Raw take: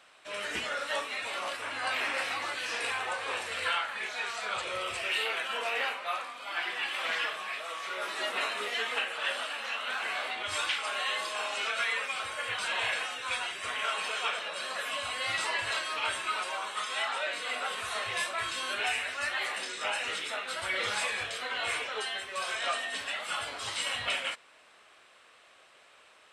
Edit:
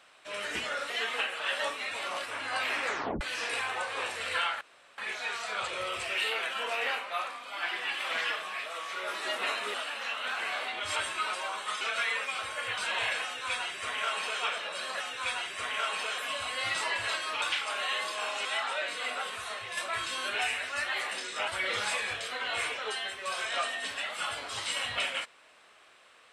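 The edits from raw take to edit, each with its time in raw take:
2.15 tape stop 0.37 s
3.92 insert room tone 0.37 s
8.68–9.37 move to 0.9
10.59–11.62 swap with 16.05–16.9
13.05–14.23 copy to 14.81
17.52–18.22 fade out, to -7.5 dB
19.93–20.58 cut

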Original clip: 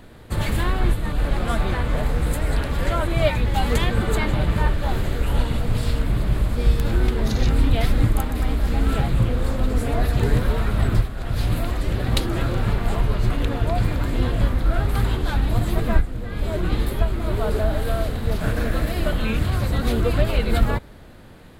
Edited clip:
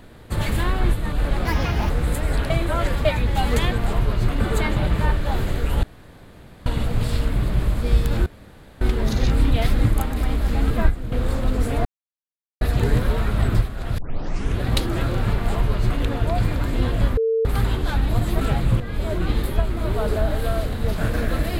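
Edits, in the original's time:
1.45–2.09 speed 142%
2.69–3.24 reverse
5.4 insert room tone 0.83 s
7 insert room tone 0.55 s
8.89–9.28 swap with 15.81–16.23
10.01 insert silence 0.76 s
11.38 tape start 0.64 s
12.8–13.42 copy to 3.97
14.57–14.85 bleep 450 Hz -17 dBFS

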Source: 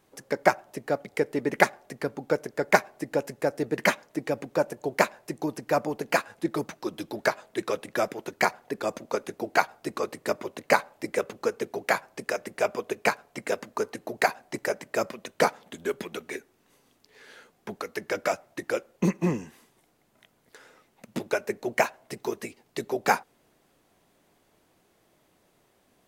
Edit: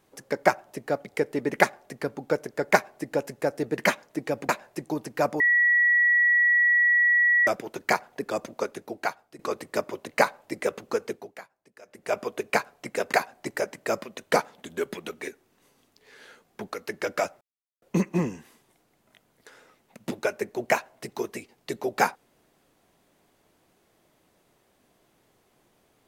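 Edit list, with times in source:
4.49–5.01 cut
5.92–7.99 bleep 1930 Hz -17 dBFS
9.08–9.91 fade out, to -16 dB
11.59–12.68 dip -23 dB, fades 0.41 s quadratic
13.65–14.21 cut
18.49–18.9 mute

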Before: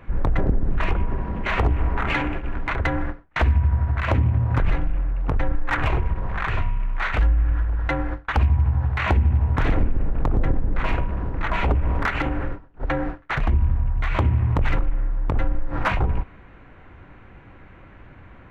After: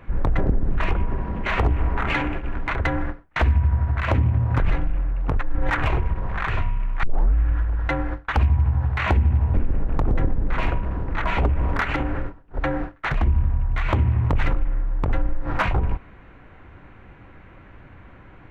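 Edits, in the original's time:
5.4–5.7 reverse
7.03 tape start 0.32 s
9.54–9.8 cut

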